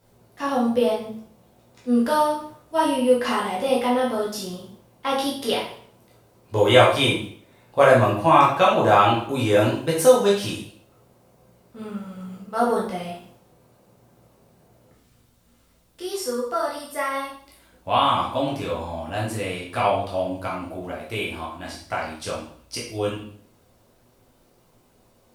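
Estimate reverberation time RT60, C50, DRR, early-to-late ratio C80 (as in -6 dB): 0.55 s, 4.5 dB, -5.5 dB, 8.5 dB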